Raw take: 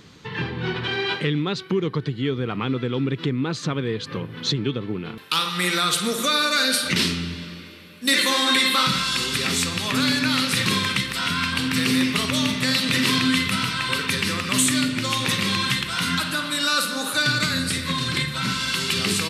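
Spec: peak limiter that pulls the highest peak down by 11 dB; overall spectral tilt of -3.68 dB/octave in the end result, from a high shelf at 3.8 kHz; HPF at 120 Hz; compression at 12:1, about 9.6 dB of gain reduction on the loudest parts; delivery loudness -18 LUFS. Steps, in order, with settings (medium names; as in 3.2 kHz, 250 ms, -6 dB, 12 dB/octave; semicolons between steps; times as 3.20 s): high-pass 120 Hz; treble shelf 3.8 kHz +6.5 dB; compression 12:1, threshold -22 dBFS; trim +8.5 dB; peak limiter -9 dBFS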